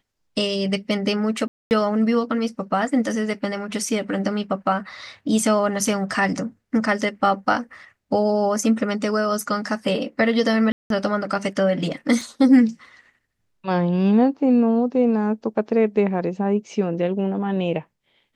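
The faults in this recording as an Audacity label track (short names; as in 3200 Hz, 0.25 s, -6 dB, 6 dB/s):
1.480000	1.710000	gap 0.229 s
10.720000	10.900000	gap 0.182 s
12.210000	12.210000	gap 2.6 ms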